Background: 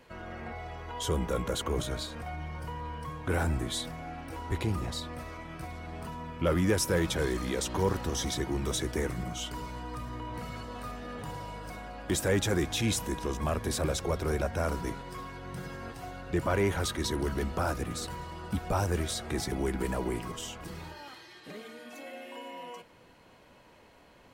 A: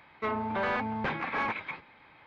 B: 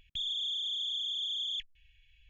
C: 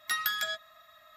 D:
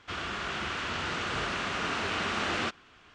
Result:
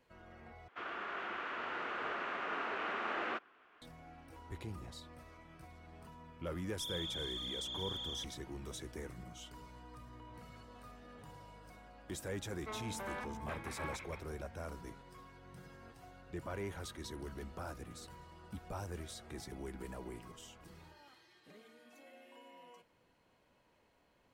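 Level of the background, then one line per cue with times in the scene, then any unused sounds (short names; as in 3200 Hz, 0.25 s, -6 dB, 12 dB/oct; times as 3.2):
background -14.5 dB
0.68 replace with D -5 dB + three-band isolator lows -23 dB, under 280 Hz, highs -21 dB, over 2400 Hz
6.64 add B -8.5 dB
12.44 add A -13.5 dB
not used: C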